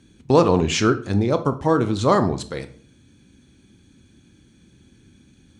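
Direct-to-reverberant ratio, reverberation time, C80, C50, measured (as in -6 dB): 10.0 dB, 0.50 s, 19.5 dB, 14.5 dB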